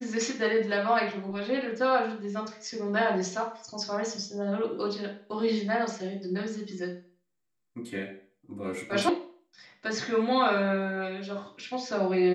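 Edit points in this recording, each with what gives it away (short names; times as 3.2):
9.09 sound cut off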